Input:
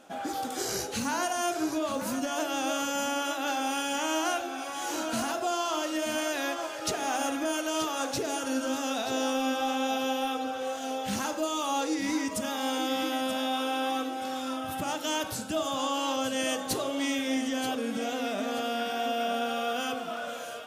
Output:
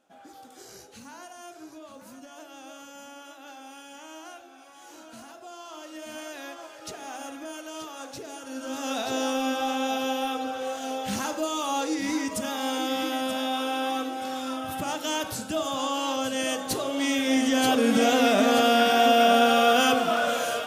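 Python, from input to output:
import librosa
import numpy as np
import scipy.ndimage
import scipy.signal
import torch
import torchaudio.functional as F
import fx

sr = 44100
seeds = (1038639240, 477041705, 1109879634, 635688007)

y = fx.gain(x, sr, db=fx.line((5.4, -15.0), (6.17, -8.5), (8.47, -8.5), (8.93, 1.5), (16.81, 1.5), (17.95, 11.0)))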